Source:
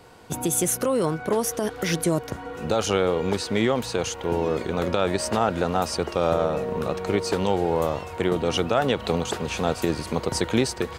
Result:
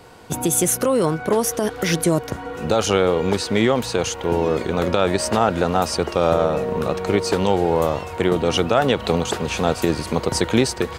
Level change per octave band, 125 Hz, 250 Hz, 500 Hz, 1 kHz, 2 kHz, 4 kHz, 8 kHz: +4.5, +4.5, +4.5, +4.5, +4.5, +4.5, +4.5 decibels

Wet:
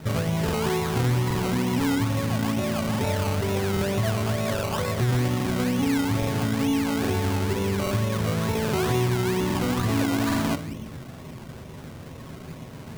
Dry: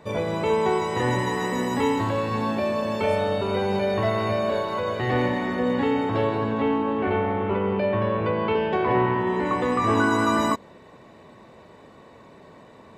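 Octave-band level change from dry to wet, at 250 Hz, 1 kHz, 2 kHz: +1.0, −6.0, −2.5 decibels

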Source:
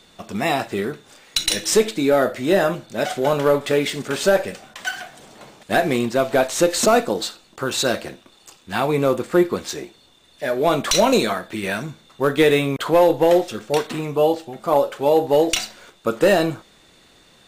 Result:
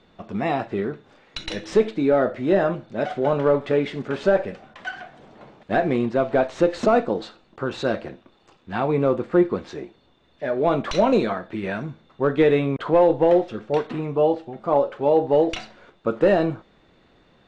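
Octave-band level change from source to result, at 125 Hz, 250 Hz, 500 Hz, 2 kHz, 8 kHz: −0.5 dB, −1.0 dB, −1.5 dB, −6.0 dB, below −20 dB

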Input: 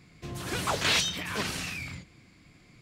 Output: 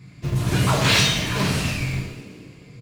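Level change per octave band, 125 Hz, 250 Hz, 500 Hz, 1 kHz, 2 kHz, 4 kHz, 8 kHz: +18.0, +13.5, +9.0, +7.5, +7.5, +7.0, +6.5 decibels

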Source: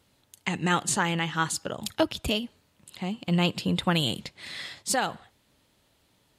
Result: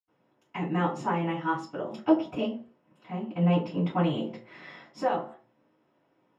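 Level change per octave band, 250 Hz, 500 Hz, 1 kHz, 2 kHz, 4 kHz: +1.5, +1.5, −0.5, −8.5, −14.5 decibels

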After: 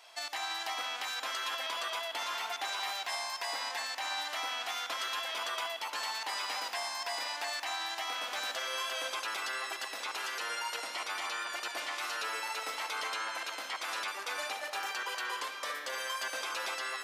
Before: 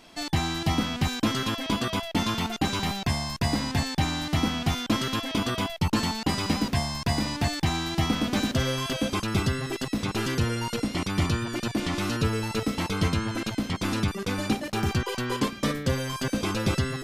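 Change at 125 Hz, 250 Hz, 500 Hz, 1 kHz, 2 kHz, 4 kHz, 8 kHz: below −40 dB, −32.5 dB, −11.5 dB, −4.5 dB, −2.5 dB, −4.5 dB, −5.0 dB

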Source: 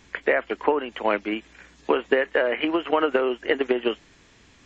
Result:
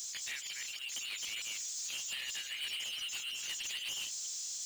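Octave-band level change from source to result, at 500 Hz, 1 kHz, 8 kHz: below −40 dB, −32.5 dB, can't be measured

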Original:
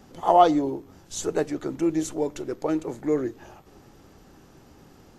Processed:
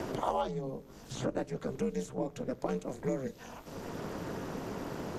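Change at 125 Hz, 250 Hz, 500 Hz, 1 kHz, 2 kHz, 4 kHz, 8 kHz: −0.5, −10.5, −9.5, −14.0, −5.0, −8.0, −11.5 decibels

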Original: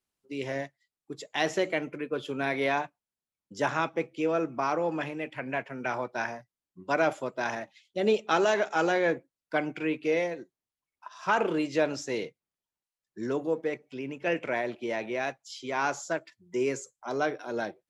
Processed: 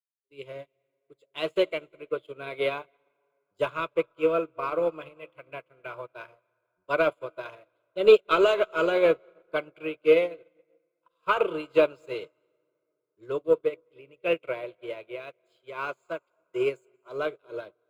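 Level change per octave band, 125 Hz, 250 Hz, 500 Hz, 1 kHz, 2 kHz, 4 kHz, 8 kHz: −5.5 dB, −3.5 dB, +4.5 dB, −2.0 dB, −2.0 dB, +1.5 dB, below −10 dB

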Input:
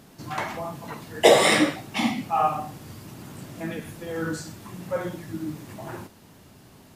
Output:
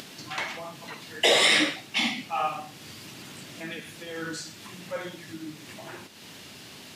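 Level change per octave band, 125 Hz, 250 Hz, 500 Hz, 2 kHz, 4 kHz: −10.0, −7.5, −8.0, +1.0, +4.0 decibels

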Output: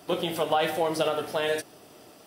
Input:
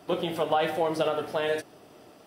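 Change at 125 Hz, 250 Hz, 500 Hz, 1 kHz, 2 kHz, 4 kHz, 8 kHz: 0.0, 0.0, 0.0, +0.5, +1.5, +3.5, +7.5 decibels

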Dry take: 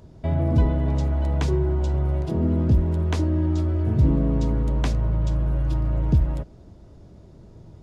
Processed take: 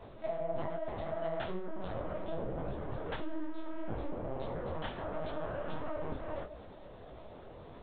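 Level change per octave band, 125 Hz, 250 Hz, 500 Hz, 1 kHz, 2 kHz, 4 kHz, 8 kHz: −24.5 dB, −17.0 dB, −6.0 dB, −4.0 dB, −5.0 dB, −9.0 dB, can't be measured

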